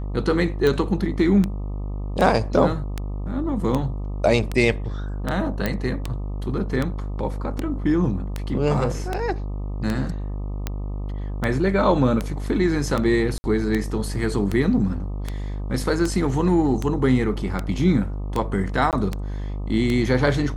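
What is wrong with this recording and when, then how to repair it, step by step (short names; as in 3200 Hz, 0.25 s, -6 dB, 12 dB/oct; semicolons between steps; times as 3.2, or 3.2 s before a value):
buzz 50 Hz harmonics 25 -28 dBFS
tick 78 rpm
5.66 pop -9 dBFS
13.38–13.44 gap 60 ms
18.91–18.93 gap 18 ms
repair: de-click; de-hum 50 Hz, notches 25; interpolate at 13.38, 60 ms; interpolate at 18.91, 18 ms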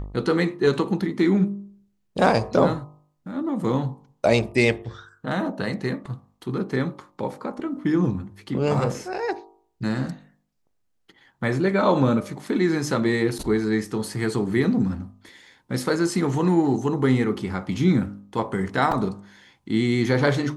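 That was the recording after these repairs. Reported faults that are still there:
none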